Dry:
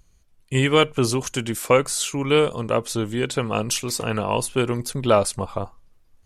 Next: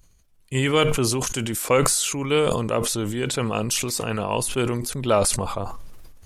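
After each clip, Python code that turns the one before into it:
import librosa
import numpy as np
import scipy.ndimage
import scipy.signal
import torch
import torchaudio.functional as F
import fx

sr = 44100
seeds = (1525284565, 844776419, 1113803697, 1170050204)

y = fx.high_shelf(x, sr, hz=8600.0, db=6.0)
y = fx.sustainer(y, sr, db_per_s=31.0)
y = y * librosa.db_to_amplitude(-3.0)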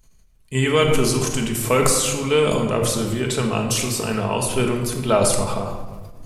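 y = fx.room_shoebox(x, sr, seeds[0], volume_m3=1200.0, walls='mixed', distance_m=1.5)
y = fx.end_taper(y, sr, db_per_s=110.0)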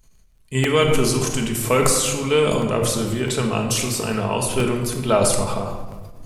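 y = fx.dmg_crackle(x, sr, seeds[1], per_s=33.0, level_db=-50.0)
y = fx.buffer_crackle(y, sr, first_s=0.64, period_s=0.66, block=64, kind='repeat')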